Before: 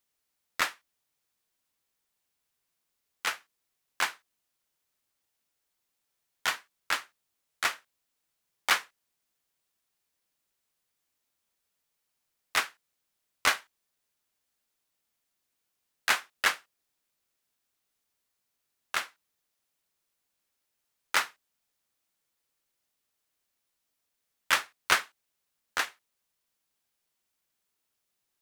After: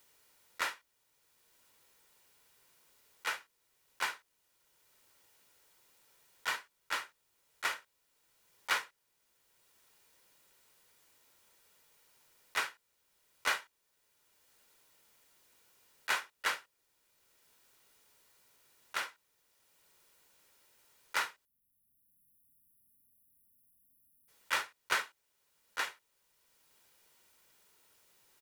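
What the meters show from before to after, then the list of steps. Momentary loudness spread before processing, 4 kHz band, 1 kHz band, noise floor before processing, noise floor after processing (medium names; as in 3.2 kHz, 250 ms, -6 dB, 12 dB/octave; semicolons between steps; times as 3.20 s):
13 LU, -7.0 dB, -5.5 dB, -82 dBFS, -78 dBFS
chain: spectral selection erased 21.45–24.28 s, 300–10000 Hz; comb 2.1 ms, depth 33%; slow attack 102 ms; three bands compressed up and down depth 40%; trim +3.5 dB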